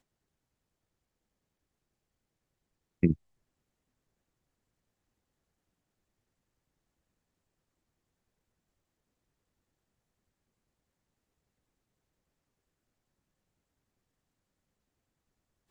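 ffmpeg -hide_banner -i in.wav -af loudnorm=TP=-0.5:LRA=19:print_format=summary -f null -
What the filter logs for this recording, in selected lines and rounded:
Input Integrated:    -30.4 LUFS
Input True Peak:      -9.0 dBTP
Input LRA:             0.0 LU
Input Threshold:     -40.4 LUFS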